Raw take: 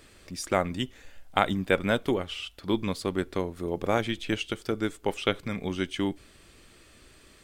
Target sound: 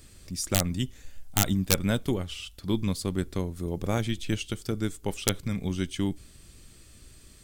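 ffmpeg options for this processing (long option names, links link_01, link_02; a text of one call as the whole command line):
ffmpeg -i in.wav -af "aeval=exprs='(mod(3.55*val(0)+1,2)-1)/3.55':channel_layout=same,bass=frequency=250:gain=13,treble=frequency=4000:gain=12,volume=-6dB" out.wav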